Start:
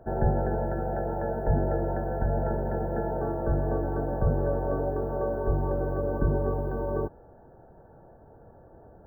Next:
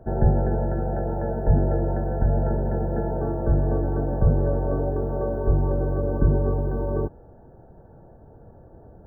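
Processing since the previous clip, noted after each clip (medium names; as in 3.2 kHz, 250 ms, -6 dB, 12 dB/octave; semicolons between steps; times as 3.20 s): bass shelf 430 Hz +9 dB; trim -2 dB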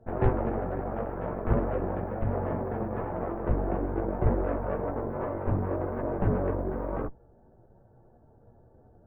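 Chebyshev shaper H 3 -16 dB, 8 -16 dB, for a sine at -6.5 dBFS; chorus voices 6, 0.33 Hz, delay 13 ms, depth 5 ms; trim -1 dB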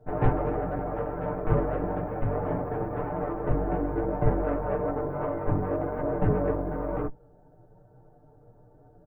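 comb 6.7 ms, depth 80%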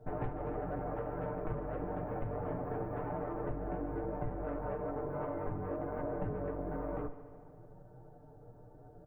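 compression 6:1, threshold -35 dBFS, peak gain reduction 18 dB; multi-head delay 73 ms, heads first and second, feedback 69%, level -18 dB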